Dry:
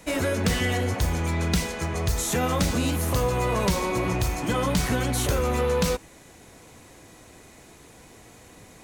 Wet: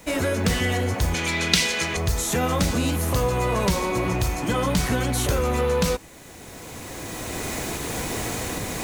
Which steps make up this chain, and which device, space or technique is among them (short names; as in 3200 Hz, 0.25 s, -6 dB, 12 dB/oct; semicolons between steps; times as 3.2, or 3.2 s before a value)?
cheap recorder with automatic gain (white noise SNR 34 dB; recorder AGC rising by 12 dB/s); 1.14–1.97 weighting filter D; gain +1.5 dB